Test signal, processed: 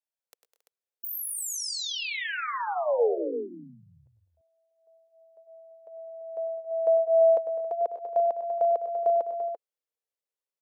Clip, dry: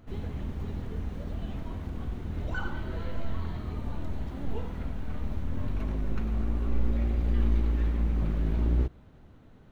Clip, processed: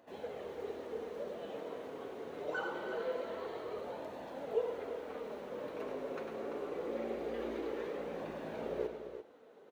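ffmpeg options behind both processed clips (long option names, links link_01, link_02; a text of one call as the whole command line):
ffmpeg -i in.wav -af "highpass=frequency=470:width_type=q:width=4.1,flanger=delay=1.1:depth=6.2:regen=-36:speed=0.24:shape=sinusoidal,aecho=1:1:100|117|204|229|274|340:0.282|0.141|0.2|0.106|0.133|0.335" out.wav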